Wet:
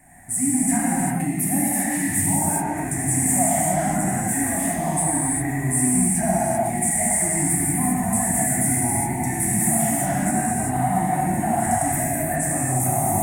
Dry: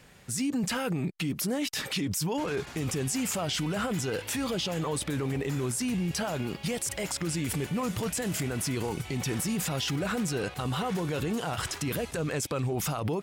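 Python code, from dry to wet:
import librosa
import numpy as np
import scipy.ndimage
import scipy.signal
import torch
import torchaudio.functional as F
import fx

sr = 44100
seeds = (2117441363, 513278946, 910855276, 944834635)

y = fx.curve_eq(x, sr, hz=(320.0, 480.0, 710.0, 1300.0, 1900.0, 3000.0, 5000.0, 8800.0, 12000.0), db=(0, -24, 13, -15, 6, -23, -22, 13, 4))
y = 10.0 ** (-14.0 / 20.0) * np.tanh(y / 10.0 ** (-14.0 / 20.0))
y = fx.rev_gated(y, sr, seeds[0], gate_ms=420, shape='flat', drr_db=-8.0)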